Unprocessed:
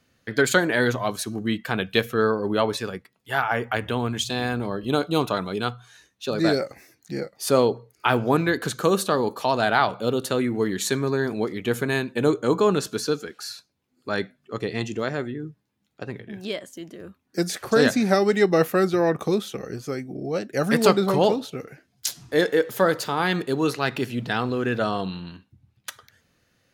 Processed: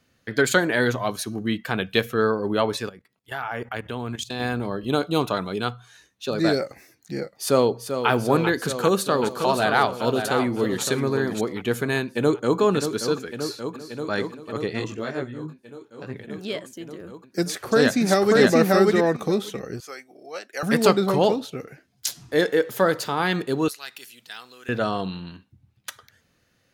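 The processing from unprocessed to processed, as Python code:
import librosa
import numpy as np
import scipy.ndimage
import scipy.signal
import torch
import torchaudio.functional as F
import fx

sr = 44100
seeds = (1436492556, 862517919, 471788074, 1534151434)

y = fx.notch(x, sr, hz=7700.0, q=7.5, at=(1.05, 1.64))
y = fx.level_steps(y, sr, step_db=15, at=(2.89, 4.4))
y = fx.echo_throw(y, sr, start_s=7.37, length_s=0.73, ms=390, feedback_pct=80, wet_db=-8.5)
y = fx.echo_single(y, sr, ms=564, db=-7.5, at=(8.67, 11.41))
y = fx.echo_throw(y, sr, start_s=12.01, length_s=0.59, ms=580, feedback_pct=80, wet_db=-7.5)
y = fx.echo_throw(y, sr, start_s=13.34, length_s=0.78, ms=390, feedback_pct=20, wet_db=-12.0)
y = fx.detune_double(y, sr, cents=fx.line((14.79, 14.0), (16.13, 29.0)), at=(14.79, 16.13), fade=0.02)
y = fx.echo_throw(y, sr, start_s=17.42, length_s=0.99, ms=590, feedback_pct=10, wet_db=-0.5)
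y = fx.highpass(y, sr, hz=830.0, slope=12, at=(19.8, 20.63))
y = fx.differentiator(y, sr, at=(23.68, 24.69))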